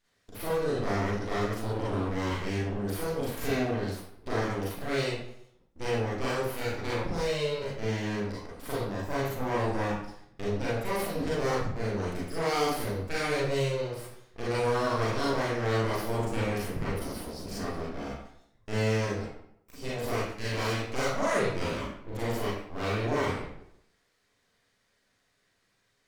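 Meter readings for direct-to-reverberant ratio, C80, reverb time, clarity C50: -8.0 dB, 4.0 dB, 0.70 s, -0.5 dB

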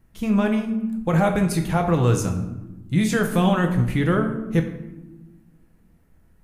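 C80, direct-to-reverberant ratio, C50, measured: 10.5 dB, 3.5 dB, 8.0 dB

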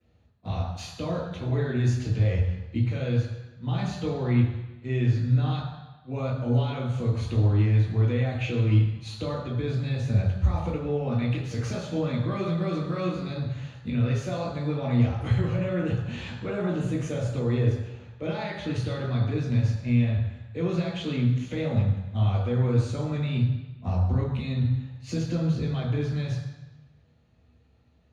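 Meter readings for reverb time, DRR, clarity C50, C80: 1.0 s, -13.5 dB, 2.0 dB, 5.0 dB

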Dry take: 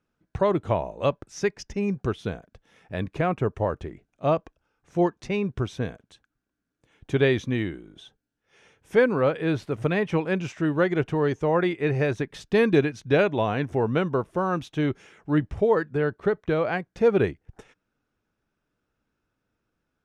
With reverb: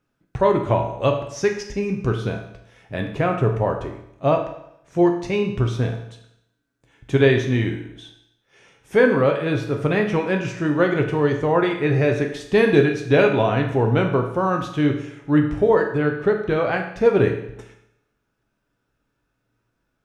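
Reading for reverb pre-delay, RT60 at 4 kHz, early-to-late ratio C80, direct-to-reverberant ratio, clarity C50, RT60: 7 ms, 0.75 s, 10.0 dB, 2.5 dB, 7.5 dB, 0.75 s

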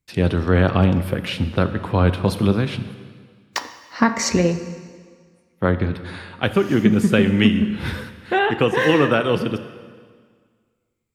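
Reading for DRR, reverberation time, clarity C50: 10.0 dB, 1.8 s, 11.5 dB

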